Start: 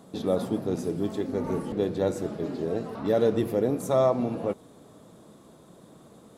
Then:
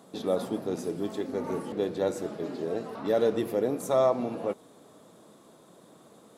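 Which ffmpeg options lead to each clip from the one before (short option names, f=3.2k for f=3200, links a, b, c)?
-af "highpass=f=320:p=1"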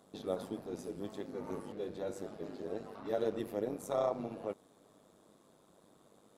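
-af "tremolo=f=100:d=0.71,volume=-6.5dB"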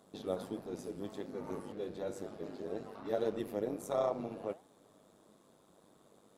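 -af "flanger=delay=4.6:depth=6.6:regen=88:speed=1.5:shape=sinusoidal,volume=4.5dB"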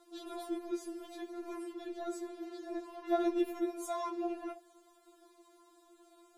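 -af "afftfilt=real='re*4*eq(mod(b,16),0)':imag='im*4*eq(mod(b,16),0)':win_size=2048:overlap=0.75,volume=5dB"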